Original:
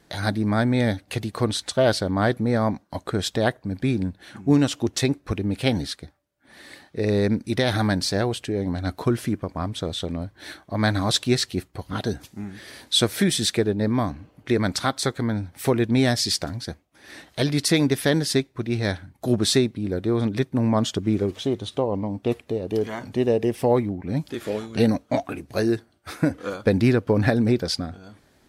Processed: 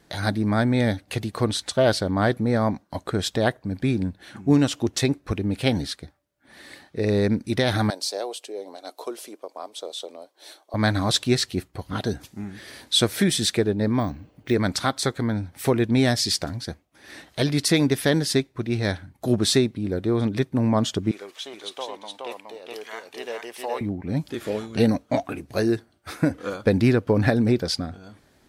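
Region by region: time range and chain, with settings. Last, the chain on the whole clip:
7.90–10.74 s: high-pass 460 Hz 24 dB/octave + peaking EQ 1.7 kHz -14.5 dB 1.2 oct
14.00–14.54 s: peaking EQ 1.2 kHz -4 dB 1.2 oct + careless resampling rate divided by 2×, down filtered, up hold
21.11–23.81 s: high-pass 960 Hz + delay 419 ms -3 dB
whole clip: none

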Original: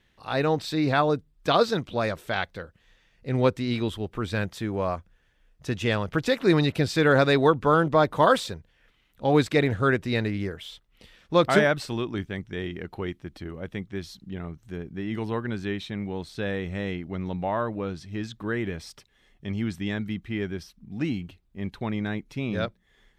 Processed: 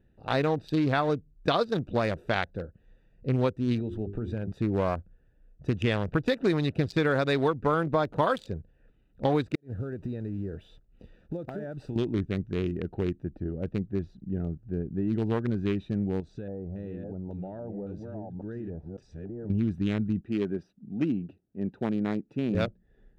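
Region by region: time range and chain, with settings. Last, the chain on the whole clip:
3.79–4.52 s: hum notches 50/100/150/200/250/300/350/400 Hz + compression 12:1, threshold -30 dBFS
9.55–11.96 s: block-companded coder 5-bit + compression 10:1, threshold -33 dBFS + inverted gate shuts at -24 dBFS, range -35 dB
13.32–15.02 s: treble shelf 6.1 kHz -11 dB + tape noise reduction on one side only decoder only
16.20–19.50 s: chunks repeated in reverse 554 ms, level -6.5 dB + LFO low-pass square 1.8 Hz 830–6700 Hz + compression 3:1, threshold -40 dBFS
20.21–22.55 s: high-pass 190 Hz + treble shelf 9.9 kHz -10 dB
whole clip: local Wiener filter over 41 samples; compression, threshold -27 dBFS; trim +5 dB

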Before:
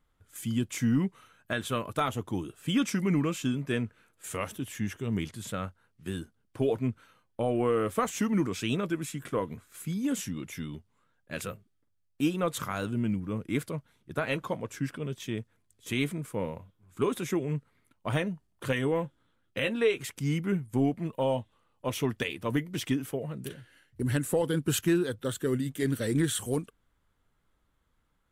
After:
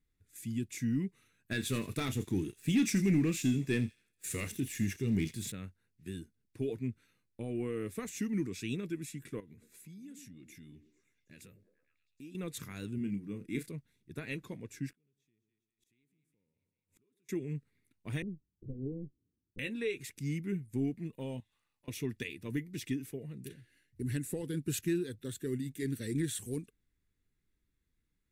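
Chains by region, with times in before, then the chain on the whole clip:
1.51–5.52 s: doubling 31 ms -13 dB + waveshaping leveller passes 2 + feedback echo behind a high-pass 83 ms, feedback 35%, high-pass 3.7 kHz, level -11 dB
9.40–12.35 s: compression 2.5:1, threshold -47 dBFS + repeats whose band climbs or falls 110 ms, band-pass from 290 Hz, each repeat 0.7 oct, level -8 dB
12.98–13.71 s: peaking EQ 89 Hz -12 dB 0.44 oct + doubling 30 ms -8 dB
14.91–17.29 s: two-band feedback delay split 860 Hz, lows 102 ms, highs 201 ms, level -13.5 dB + compression 3:1, threshold -43 dBFS + inverted gate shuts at -46 dBFS, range -28 dB
18.22–19.59 s: comb filter that takes the minimum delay 0.64 ms + steep low-pass 540 Hz
21.40–21.88 s: resonant low shelf 560 Hz -10.5 dB, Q 1.5 + compression 4:1, threshold -53 dBFS + waveshaping leveller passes 1
whole clip: high-order bell 870 Hz -14 dB; band-stop 3.1 kHz, Q 6.5; trim -6.5 dB

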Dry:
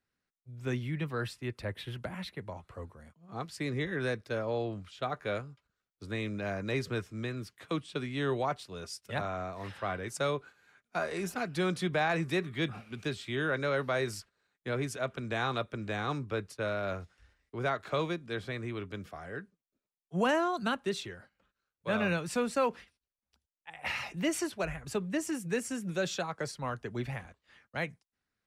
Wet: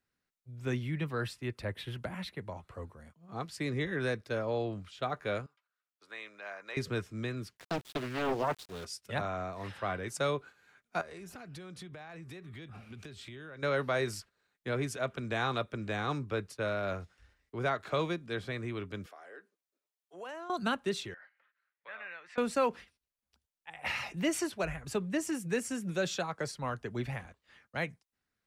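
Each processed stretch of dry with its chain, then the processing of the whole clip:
5.46–6.77 s: high-pass 1 kHz + treble shelf 3.1 kHz -11 dB
7.57–8.85 s: small samples zeroed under -46 dBFS + loudspeaker Doppler distortion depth 0.94 ms
11.01–13.63 s: peaking EQ 67 Hz +8 dB 1.6 oct + compression 16:1, threshold -43 dBFS
19.06–20.50 s: high-pass 340 Hz 24 dB/octave + compression 2:1, threshold -53 dBFS
21.14–22.38 s: peaking EQ 1.9 kHz +13 dB 0.52 oct + compression 2:1, threshold -51 dBFS + band-pass 760–3100 Hz
whole clip: none

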